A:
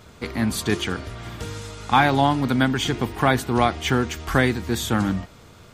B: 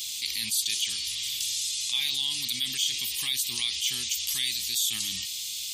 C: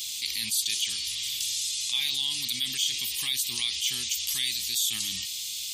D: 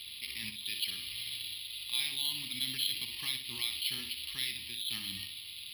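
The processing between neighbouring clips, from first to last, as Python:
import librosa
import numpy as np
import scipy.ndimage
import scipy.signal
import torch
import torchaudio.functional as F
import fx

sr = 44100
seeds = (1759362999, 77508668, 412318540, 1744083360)

y1 = scipy.signal.sosfilt(scipy.signal.cheby2(4, 40, 1600.0, 'highpass', fs=sr, output='sos'), x)
y1 = fx.high_shelf(y1, sr, hz=8600.0, db=4.0)
y1 = fx.env_flatten(y1, sr, amount_pct=70)
y2 = y1
y3 = fx.echo_feedback(y2, sr, ms=61, feedback_pct=34, wet_db=-8)
y3 = np.repeat(scipy.signal.resample_poly(y3, 1, 6), 6)[:len(y3)]
y3 = F.gain(torch.from_numpy(y3), -3.5).numpy()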